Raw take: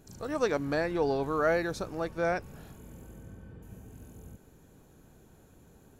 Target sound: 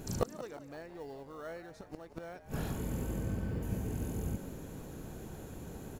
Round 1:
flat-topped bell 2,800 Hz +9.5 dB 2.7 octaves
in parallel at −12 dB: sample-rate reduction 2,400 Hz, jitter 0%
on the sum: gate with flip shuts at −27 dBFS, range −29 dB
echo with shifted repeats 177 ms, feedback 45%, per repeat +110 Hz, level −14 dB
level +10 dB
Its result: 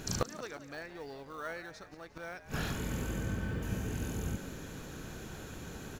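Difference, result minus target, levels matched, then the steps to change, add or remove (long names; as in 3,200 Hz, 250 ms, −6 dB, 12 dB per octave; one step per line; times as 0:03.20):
2,000 Hz band +8.0 dB
remove: flat-topped bell 2,800 Hz +9.5 dB 2.7 octaves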